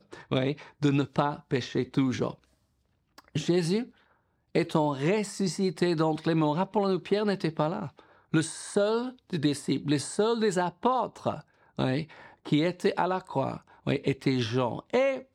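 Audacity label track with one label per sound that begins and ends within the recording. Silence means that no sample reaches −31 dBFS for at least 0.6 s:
3.350000	3.830000	sound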